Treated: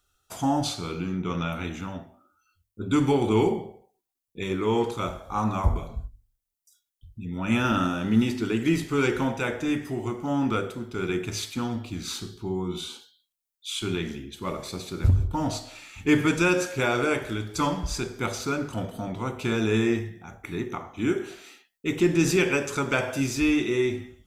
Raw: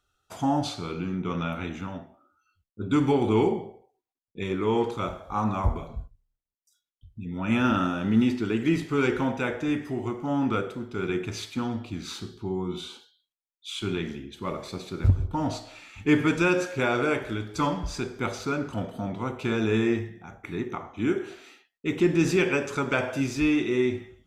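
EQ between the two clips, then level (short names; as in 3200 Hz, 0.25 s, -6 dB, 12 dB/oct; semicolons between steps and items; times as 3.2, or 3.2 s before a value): low shelf 86 Hz +6 dB; high shelf 5800 Hz +11.5 dB; notches 50/100/150/200/250 Hz; 0.0 dB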